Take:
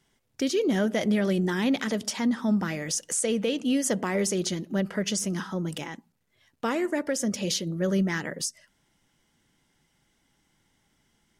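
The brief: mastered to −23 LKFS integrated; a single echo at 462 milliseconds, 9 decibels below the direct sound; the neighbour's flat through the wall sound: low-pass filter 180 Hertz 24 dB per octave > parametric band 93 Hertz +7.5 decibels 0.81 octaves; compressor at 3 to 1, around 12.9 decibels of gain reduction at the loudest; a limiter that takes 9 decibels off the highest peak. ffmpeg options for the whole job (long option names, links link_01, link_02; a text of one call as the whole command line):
ffmpeg -i in.wav -af "acompressor=threshold=-39dB:ratio=3,alimiter=level_in=9.5dB:limit=-24dB:level=0:latency=1,volume=-9.5dB,lowpass=frequency=180:width=0.5412,lowpass=frequency=180:width=1.3066,equalizer=frequency=93:width_type=o:width=0.81:gain=7.5,aecho=1:1:462:0.355,volume=25.5dB" out.wav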